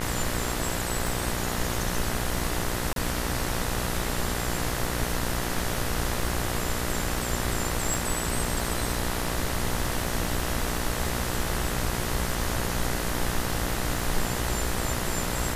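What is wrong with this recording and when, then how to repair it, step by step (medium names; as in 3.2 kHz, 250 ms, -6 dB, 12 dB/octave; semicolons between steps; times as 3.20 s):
buzz 60 Hz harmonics 34 -32 dBFS
crackle 35 per s -35 dBFS
1.07 s: pop
2.93–2.96 s: dropout 32 ms
7.94 s: pop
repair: de-click; de-hum 60 Hz, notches 34; interpolate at 2.93 s, 32 ms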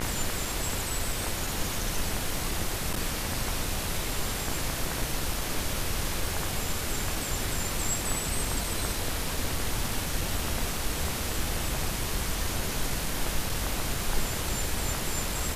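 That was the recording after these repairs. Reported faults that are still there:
1.07 s: pop
7.94 s: pop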